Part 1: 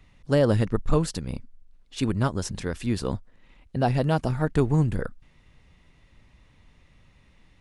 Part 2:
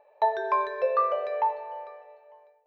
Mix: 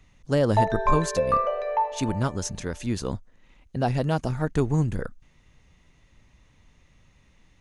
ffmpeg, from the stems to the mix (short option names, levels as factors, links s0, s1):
-filter_complex "[0:a]volume=0.841[s0];[1:a]adelay=350,volume=1.19[s1];[s0][s1]amix=inputs=2:normalize=0,equalizer=f=6400:w=5.7:g=10.5"